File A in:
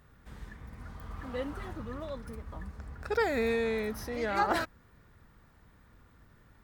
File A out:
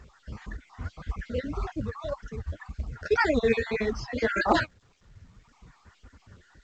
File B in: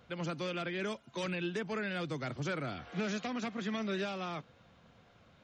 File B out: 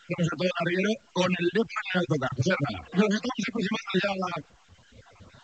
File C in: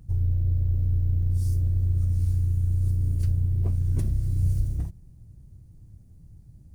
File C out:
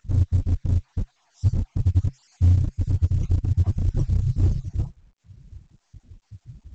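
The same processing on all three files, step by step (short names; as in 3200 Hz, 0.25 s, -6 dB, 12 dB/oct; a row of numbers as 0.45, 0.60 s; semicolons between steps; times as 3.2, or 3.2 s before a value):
random spectral dropouts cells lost 44%; reverb removal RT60 1.4 s; HPF 45 Hz 12 dB/oct; low shelf 65 Hz +11.5 dB; one-sided clip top -21 dBFS, bottom -17 dBFS; flange 1.8 Hz, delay 2.1 ms, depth 9.9 ms, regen +17%; dynamic EQ 130 Hz, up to +4 dB, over -53 dBFS, Q 6.9; µ-law 128 kbps 16000 Hz; normalise peaks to -9 dBFS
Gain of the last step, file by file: +11.5, +16.0, +8.0 dB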